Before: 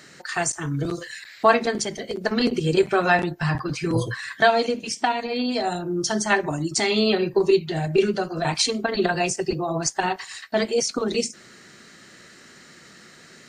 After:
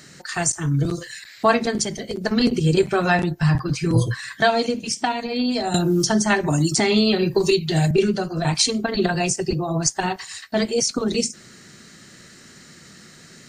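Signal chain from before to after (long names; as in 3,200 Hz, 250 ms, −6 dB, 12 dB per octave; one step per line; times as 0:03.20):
bass and treble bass +9 dB, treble +6 dB
0:05.74–0:07.91: multiband upward and downward compressor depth 100%
level −1 dB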